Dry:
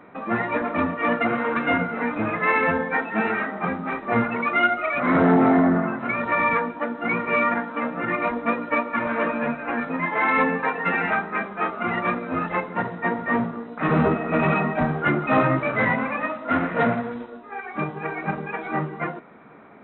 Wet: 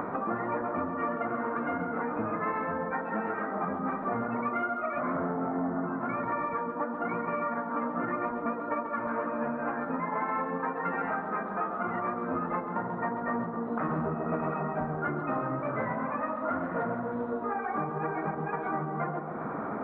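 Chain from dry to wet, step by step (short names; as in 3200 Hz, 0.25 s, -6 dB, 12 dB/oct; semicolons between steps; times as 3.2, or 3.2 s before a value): upward compressor, threshold -24 dBFS; resonant high shelf 1900 Hz -14 dB, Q 1.5; compressor 10:1, threshold -29 dBFS, peak gain reduction 17 dB; tape echo 0.136 s, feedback 79%, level -5 dB, low-pass 1100 Hz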